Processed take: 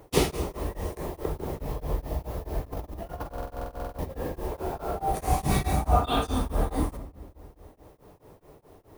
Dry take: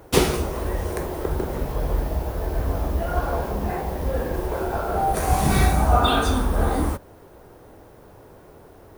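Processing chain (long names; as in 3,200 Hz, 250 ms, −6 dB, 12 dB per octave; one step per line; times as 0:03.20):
parametric band 1,500 Hz −8.5 dB 0.24 octaves
0:02.67–0:04.13: compressor whose output falls as the input rises −27 dBFS, ratio −0.5
rectangular room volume 1,200 cubic metres, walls mixed, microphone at 0.4 metres
buffer that repeats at 0:03.29, samples 2,048, times 14
tremolo along a rectified sine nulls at 4.7 Hz
level −3.5 dB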